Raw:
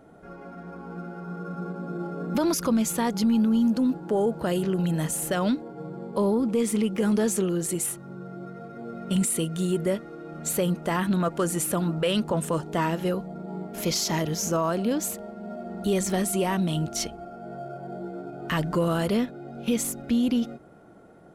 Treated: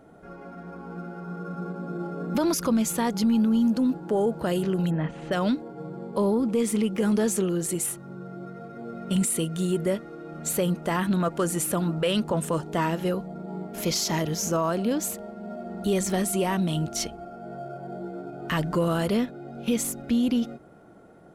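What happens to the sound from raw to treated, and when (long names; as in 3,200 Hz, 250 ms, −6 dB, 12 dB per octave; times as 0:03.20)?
0:04.89–0:05.31: low-pass filter 1,900 Hz → 4,400 Hz 24 dB per octave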